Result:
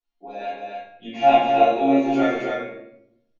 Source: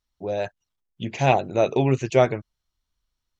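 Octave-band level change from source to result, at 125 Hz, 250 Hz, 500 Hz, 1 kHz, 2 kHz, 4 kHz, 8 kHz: -15.5 dB, +5.5 dB, +1.5 dB, +7.0 dB, +1.5 dB, +2.5 dB, no reading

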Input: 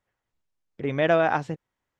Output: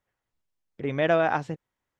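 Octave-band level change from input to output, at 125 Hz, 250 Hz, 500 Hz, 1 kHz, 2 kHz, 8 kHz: -1.5 dB, -1.5 dB, -1.5 dB, -1.5 dB, -1.5 dB, no reading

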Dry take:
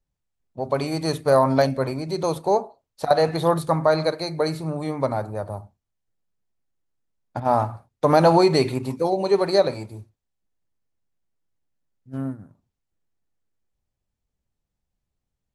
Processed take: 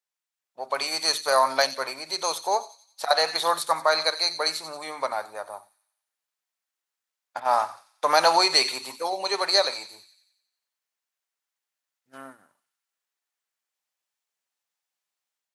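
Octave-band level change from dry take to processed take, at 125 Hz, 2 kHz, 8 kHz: under -25 dB, +5.0 dB, +9.5 dB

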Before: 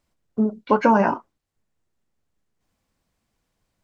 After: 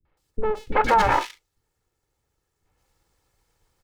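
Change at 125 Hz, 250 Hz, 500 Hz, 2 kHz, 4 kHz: -3.0 dB, -13.5 dB, -3.0 dB, +2.5 dB, no reading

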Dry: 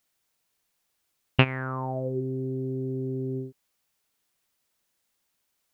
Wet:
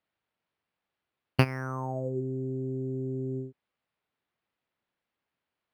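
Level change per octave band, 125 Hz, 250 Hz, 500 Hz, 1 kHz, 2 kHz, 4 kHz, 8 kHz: -2.0 dB, -2.0 dB, -2.5 dB, -3.0 dB, -6.0 dB, -7.5 dB, no reading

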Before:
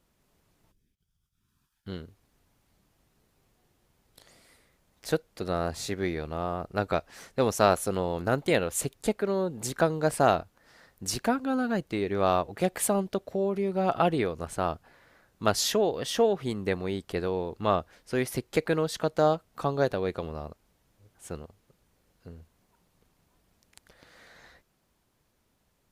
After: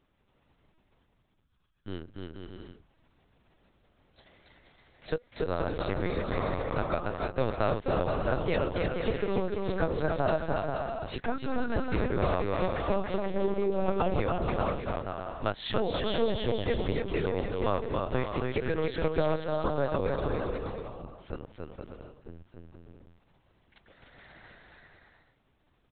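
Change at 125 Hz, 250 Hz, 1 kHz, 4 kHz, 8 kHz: +0.5 dB, -2.5 dB, -3.5 dB, -4.0 dB, under -40 dB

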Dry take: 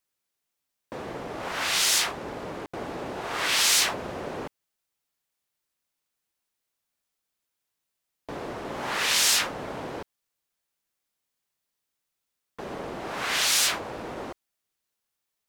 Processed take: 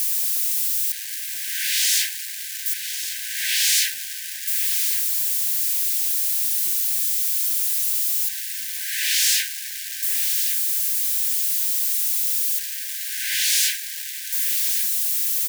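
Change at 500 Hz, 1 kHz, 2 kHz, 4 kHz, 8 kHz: under -40 dB, under -40 dB, +1.0 dB, +3.0 dB, +7.5 dB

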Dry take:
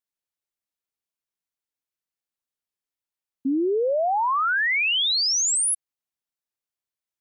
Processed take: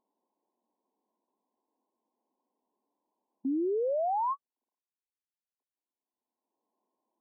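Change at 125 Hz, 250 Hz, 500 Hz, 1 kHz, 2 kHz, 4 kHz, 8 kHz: no reading, -7.0 dB, -7.0 dB, -8.5 dB, under -40 dB, under -40 dB, under -40 dB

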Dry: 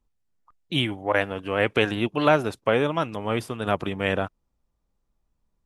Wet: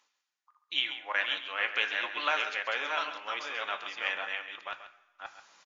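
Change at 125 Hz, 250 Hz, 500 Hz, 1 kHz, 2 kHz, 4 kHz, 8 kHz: under -40 dB, -26.5 dB, -17.5 dB, -7.0 dB, -1.5 dB, -1.0 dB, -5.5 dB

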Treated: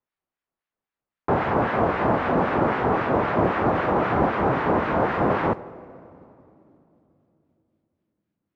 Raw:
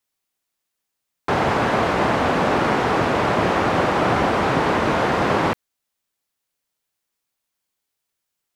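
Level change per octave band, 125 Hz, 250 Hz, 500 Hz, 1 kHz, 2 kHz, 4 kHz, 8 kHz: -2.0 dB, -2.0 dB, -2.0 dB, -3.0 dB, -5.5 dB, -13.0 dB, under -20 dB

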